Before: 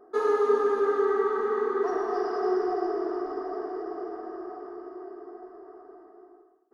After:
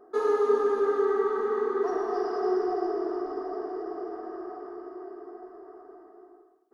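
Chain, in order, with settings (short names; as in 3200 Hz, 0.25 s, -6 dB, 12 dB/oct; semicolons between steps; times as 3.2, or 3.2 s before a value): dynamic EQ 1800 Hz, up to -3 dB, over -42 dBFS, Q 0.78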